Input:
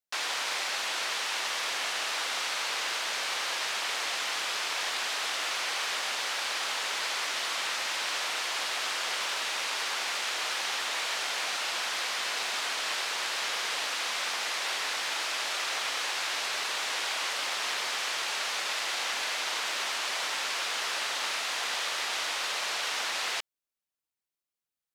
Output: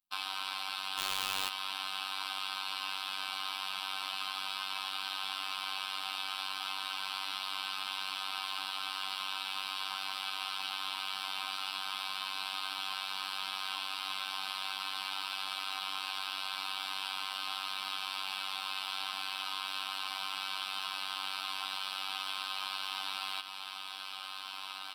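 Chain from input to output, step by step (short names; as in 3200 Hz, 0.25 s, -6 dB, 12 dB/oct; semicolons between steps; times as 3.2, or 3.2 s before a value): low shelf 160 Hz +3.5 dB; fixed phaser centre 1900 Hz, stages 6; comb 3.9 ms, depth 97%; diffused feedback echo 1.778 s, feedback 45%, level -10 dB; 0.98–1.49 companded quantiser 2-bit; compressor 3:1, threshold -34 dBFS, peak gain reduction 6 dB; robotiser 96.1 Hz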